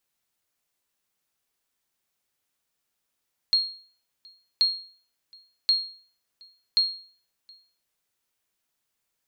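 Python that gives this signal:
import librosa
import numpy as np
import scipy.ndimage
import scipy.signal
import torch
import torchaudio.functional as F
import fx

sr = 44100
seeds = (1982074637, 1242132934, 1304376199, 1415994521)

y = fx.sonar_ping(sr, hz=4260.0, decay_s=0.46, every_s=1.08, pings=4, echo_s=0.72, echo_db=-29.0, level_db=-14.0)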